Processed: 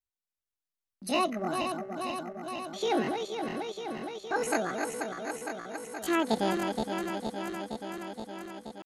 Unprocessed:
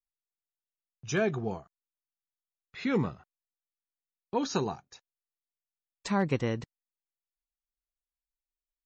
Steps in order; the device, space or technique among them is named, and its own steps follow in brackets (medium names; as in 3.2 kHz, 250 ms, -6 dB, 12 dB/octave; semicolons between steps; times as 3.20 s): backward echo that repeats 235 ms, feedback 85%, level -5.5 dB; chipmunk voice (pitch shift +9 st)